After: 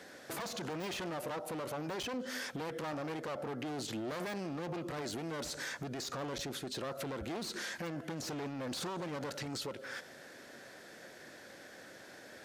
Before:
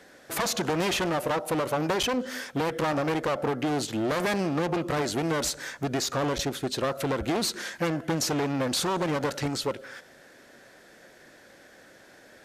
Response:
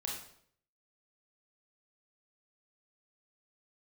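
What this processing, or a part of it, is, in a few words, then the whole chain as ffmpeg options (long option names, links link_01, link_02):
broadcast voice chain: -af "highpass=72,deesser=0.65,acompressor=threshold=-35dB:ratio=3,equalizer=frequency=4700:width_type=o:width=0.77:gain=2,alimiter=level_in=7.5dB:limit=-24dB:level=0:latency=1:release=11,volume=-7.5dB"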